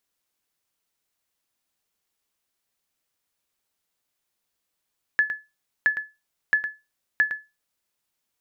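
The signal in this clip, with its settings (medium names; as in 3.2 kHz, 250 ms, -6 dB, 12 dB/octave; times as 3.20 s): sonar ping 1.72 kHz, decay 0.24 s, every 0.67 s, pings 4, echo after 0.11 s, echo -10 dB -11.5 dBFS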